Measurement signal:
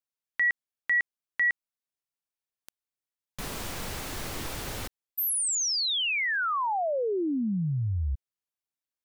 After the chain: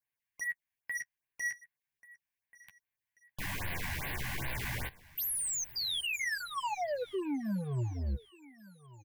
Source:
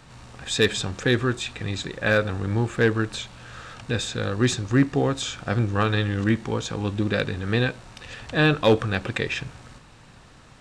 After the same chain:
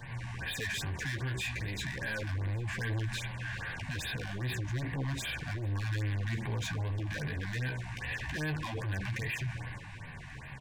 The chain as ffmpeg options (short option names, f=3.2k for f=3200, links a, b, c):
-af "equalizer=f=125:t=o:w=1:g=5,equalizer=f=250:t=o:w=1:g=-6,equalizer=f=500:t=o:w=1:g=-5,equalizer=f=2k:t=o:w=1:g=9,equalizer=f=4k:t=o:w=1:g=-7,equalizer=f=8k:t=o:w=1:g=-6,acompressor=threshold=-28dB:ratio=6:attack=0.64:release=30:knee=6,asoftclip=type=hard:threshold=-33.5dB,flanger=delay=8.2:depth=8.4:regen=14:speed=0.32:shape=triangular,asoftclip=type=tanh:threshold=-35.5dB,asuperstop=centerf=1300:order=4:qfactor=4.4,aecho=1:1:1136|2272|3408:0.0841|0.032|0.0121,afftfilt=real='re*(1-between(b*sr/1024,390*pow(7300/390,0.5+0.5*sin(2*PI*2.5*pts/sr))/1.41,390*pow(7300/390,0.5+0.5*sin(2*PI*2.5*pts/sr))*1.41))':imag='im*(1-between(b*sr/1024,390*pow(7300/390,0.5+0.5*sin(2*PI*2.5*pts/sr))/1.41,390*pow(7300/390,0.5+0.5*sin(2*PI*2.5*pts/sr))*1.41))':win_size=1024:overlap=0.75,volume=6.5dB"